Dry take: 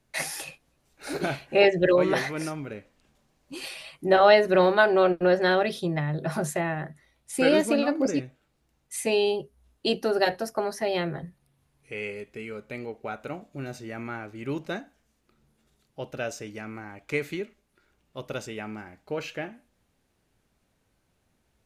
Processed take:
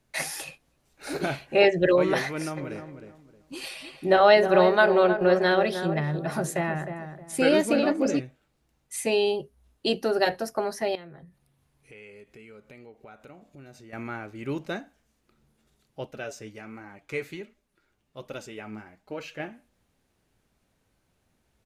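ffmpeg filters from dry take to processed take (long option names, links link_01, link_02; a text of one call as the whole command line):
ffmpeg -i in.wav -filter_complex "[0:a]asplit=3[link_01][link_02][link_03];[link_01]afade=type=out:start_time=2.56:duration=0.02[link_04];[link_02]asplit=2[link_05][link_06];[link_06]adelay=312,lowpass=frequency=1500:poles=1,volume=-8dB,asplit=2[link_07][link_08];[link_08]adelay=312,lowpass=frequency=1500:poles=1,volume=0.28,asplit=2[link_09][link_10];[link_10]adelay=312,lowpass=frequency=1500:poles=1,volume=0.28[link_11];[link_05][link_07][link_09][link_11]amix=inputs=4:normalize=0,afade=type=in:start_time=2.56:duration=0.02,afade=type=out:start_time=8.16:duration=0.02[link_12];[link_03]afade=type=in:start_time=8.16:duration=0.02[link_13];[link_04][link_12][link_13]amix=inputs=3:normalize=0,asettb=1/sr,asplit=3[link_14][link_15][link_16];[link_14]atrim=end=10.954[link_17];[link_15]atrim=start=10.95:end=13.93,asetpts=PTS-STARTPTS,afade=type=in:duration=0.004:curve=qsin,afade=type=out:start_time=2.976:duration=0.004:curve=qsin,acompressor=threshold=-50dB:ratio=2.5:attack=3.2:release=140:knee=1:detection=peak[link_18];[link_16]atrim=start=13.926[link_19];[link_17][link_18]acrossfade=duration=0.004:curve1=hsin:curve2=qsin[link_20];[link_20][link_19]acrossfade=duration=0.004:curve1=qsin:curve2=hsin,asettb=1/sr,asplit=3[link_21][link_22][link_23];[link_21]atrim=end=16.064[link_24];[link_22]atrim=start=16.06:end=19.4,asetpts=PTS-STARTPTS,afade=type=in:duration=0.004:curve=qsin,afade=type=out:start_time=3.336:duration=0.004:curve=qsin,flanger=delay=2.9:depth=6.7:regen=45:speed=1.3:shape=triangular[link_25];[link_23]atrim=start=19.396[link_26];[link_24][link_25]acrossfade=duration=0.004:curve1=hsin:curve2=qsin[link_27];[link_27][link_26]acrossfade=duration=0.004:curve1=qsin:curve2=hsin" out.wav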